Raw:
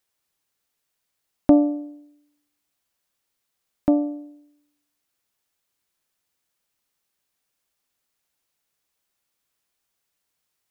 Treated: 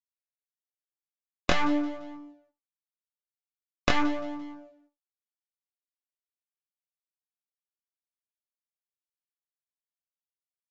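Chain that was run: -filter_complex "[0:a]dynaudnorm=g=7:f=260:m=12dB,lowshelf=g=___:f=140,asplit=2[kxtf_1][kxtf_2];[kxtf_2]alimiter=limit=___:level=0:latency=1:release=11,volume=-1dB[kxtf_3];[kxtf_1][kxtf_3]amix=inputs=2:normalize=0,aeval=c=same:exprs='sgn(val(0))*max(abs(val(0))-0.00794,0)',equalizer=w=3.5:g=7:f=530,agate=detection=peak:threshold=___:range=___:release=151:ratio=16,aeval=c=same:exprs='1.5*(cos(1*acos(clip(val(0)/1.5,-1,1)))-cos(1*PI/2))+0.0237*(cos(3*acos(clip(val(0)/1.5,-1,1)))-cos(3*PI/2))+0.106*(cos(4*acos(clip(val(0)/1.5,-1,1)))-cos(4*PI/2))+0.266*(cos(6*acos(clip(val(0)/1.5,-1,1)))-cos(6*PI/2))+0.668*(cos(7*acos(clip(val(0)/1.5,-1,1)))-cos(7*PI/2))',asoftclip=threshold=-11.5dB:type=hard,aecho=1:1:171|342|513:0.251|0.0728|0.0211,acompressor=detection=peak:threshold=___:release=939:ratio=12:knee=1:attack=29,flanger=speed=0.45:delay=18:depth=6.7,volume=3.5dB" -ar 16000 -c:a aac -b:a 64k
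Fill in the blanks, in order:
-11, -9dB, -40dB, -11dB, -25dB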